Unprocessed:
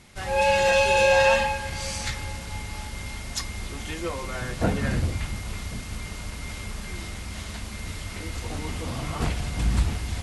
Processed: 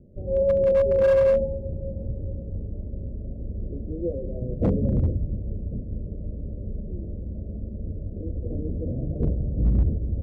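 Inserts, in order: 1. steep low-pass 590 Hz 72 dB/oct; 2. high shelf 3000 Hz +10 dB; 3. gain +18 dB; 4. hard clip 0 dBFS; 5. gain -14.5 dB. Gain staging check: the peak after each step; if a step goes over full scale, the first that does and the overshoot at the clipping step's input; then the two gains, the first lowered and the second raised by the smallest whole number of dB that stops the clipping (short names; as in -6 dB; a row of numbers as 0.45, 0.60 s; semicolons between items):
-11.0, -11.0, +7.0, 0.0, -14.5 dBFS; step 3, 7.0 dB; step 3 +11 dB, step 5 -7.5 dB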